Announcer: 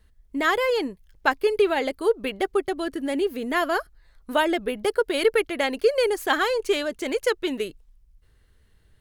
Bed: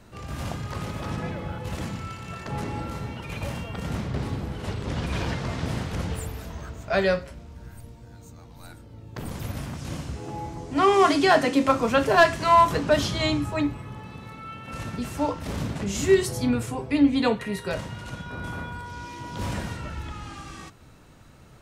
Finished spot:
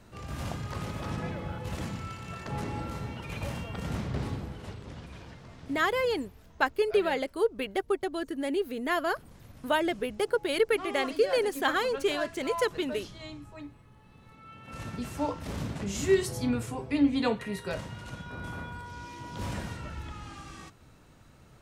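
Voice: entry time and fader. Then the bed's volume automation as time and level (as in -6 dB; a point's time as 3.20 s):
5.35 s, -5.0 dB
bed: 4.27 s -3.5 dB
5.23 s -19 dB
13.96 s -19 dB
14.86 s -5 dB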